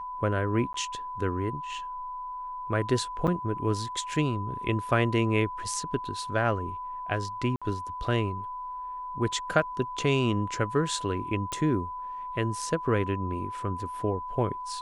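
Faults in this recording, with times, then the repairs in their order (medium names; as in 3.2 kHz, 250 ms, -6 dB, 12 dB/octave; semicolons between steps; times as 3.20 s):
whine 1 kHz -34 dBFS
0.73–0.74 s: dropout 13 ms
3.27–3.28 s: dropout 7 ms
7.56–7.62 s: dropout 56 ms
11.52 s: pop -19 dBFS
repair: de-click; band-stop 1 kHz, Q 30; interpolate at 0.73 s, 13 ms; interpolate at 3.27 s, 7 ms; interpolate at 7.56 s, 56 ms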